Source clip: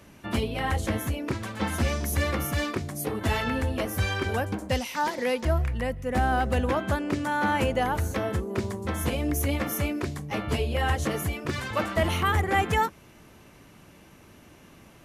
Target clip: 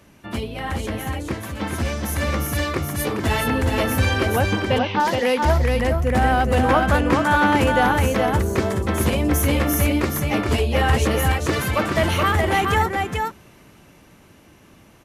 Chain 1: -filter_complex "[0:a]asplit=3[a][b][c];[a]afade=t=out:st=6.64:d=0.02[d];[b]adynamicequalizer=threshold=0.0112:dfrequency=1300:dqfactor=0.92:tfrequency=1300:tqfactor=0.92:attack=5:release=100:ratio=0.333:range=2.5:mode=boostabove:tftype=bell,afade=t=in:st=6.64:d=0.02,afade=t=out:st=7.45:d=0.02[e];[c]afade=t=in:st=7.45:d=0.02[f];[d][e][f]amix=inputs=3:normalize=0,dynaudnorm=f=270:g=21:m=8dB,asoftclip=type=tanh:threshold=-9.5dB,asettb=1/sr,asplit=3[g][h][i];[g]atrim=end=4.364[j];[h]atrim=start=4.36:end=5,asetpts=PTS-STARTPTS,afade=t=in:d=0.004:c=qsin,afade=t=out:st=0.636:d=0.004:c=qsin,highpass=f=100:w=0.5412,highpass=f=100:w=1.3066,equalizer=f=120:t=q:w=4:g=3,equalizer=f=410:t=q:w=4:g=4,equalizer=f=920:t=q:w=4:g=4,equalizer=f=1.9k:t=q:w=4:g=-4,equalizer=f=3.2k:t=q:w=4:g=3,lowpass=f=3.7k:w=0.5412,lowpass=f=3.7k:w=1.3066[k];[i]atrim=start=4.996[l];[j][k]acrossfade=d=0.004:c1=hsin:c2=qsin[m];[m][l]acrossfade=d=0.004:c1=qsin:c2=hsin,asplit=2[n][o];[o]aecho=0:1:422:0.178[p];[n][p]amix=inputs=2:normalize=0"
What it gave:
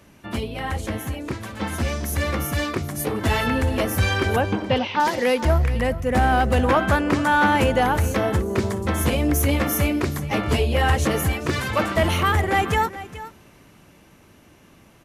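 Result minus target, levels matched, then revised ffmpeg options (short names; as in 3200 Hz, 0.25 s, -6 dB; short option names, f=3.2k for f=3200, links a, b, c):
echo-to-direct -11.5 dB
-filter_complex "[0:a]asplit=3[a][b][c];[a]afade=t=out:st=6.64:d=0.02[d];[b]adynamicequalizer=threshold=0.0112:dfrequency=1300:dqfactor=0.92:tfrequency=1300:tqfactor=0.92:attack=5:release=100:ratio=0.333:range=2.5:mode=boostabove:tftype=bell,afade=t=in:st=6.64:d=0.02,afade=t=out:st=7.45:d=0.02[e];[c]afade=t=in:st=7.45:d=0.02[f];[d][e][f]amix=inputs=3:normalize=0,dynaudnorm=f=270:g=21:m=8dB,asoftclip=type=tanh:threshold=-9.5dB,asettb=1/sr,asplit=3[g][h][i];[g]atrim=end=4.364[j];[h]atrim=start=4.36:end=5,asetpts=PTS-STARTPTS,afade=t=in:d=0.004:c=qsin,afade=t=out:st=0.636:d=0.004:c=qsin,highpass=f=100:w=0.5412,highpass=f=100:w=1.3066,equalizer=f=120:t=q:w=4:g=3,equalizer=f=410:t=q:w=4:g=4,equalizer=f=920:t=q:w=4:g=4,equalizer=f=1.9k:t=q:w=4:g=-4,equalizer=f=3.2k:t=q:w=4:g=3,lowpass=f=3.7k:w=0.5412,lowpass=f=3.7k:w=1.3066[k];[i]atrim=start=4.996[l];[j][k]acrossfade=d=0.004:c1=hsin:c2=qsin[m];[m][l]acrossfade=d=0.004:c1=qsin:c2=hsin,asplit=2[n][o];[o]aecho=0:1:422:0.668[p];[n][p]amix=inputs=2:normalize=0"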